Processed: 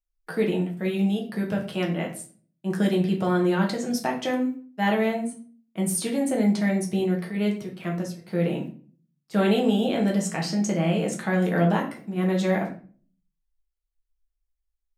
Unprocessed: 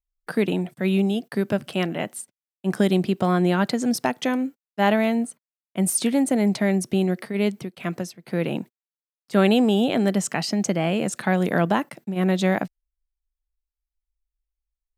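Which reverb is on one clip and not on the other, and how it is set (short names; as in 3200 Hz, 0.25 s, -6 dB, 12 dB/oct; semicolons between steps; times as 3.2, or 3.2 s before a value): shoebox room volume 34 m³, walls mixed, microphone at 0.62 m; gain -6.5 dB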